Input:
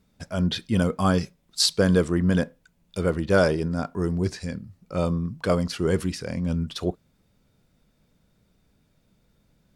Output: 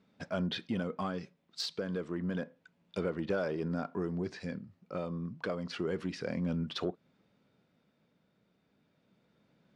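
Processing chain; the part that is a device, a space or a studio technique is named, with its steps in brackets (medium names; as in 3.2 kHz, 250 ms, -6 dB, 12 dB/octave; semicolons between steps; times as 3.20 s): AM radio (band-pass 180–3500 Hz; compression 5:1, threshold -29 dBFS, peak gain reduction 13.5 dB; saturation -20.5 dBFS, distortion -23 dB; tremolo 0.3 Hz, depth 36%)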